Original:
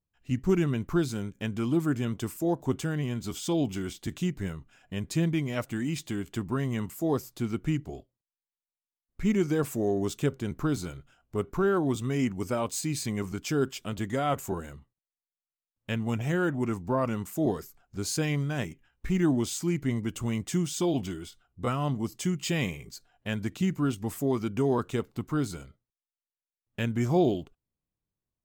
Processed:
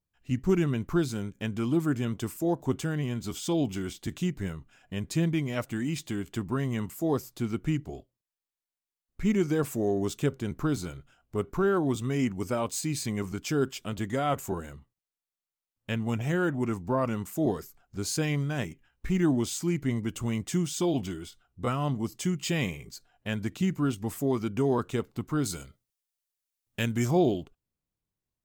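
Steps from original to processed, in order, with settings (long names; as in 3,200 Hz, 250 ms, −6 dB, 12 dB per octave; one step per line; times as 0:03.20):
0:25.45–0:27.11: high-shelf EQ 3,300 Hz +10 dB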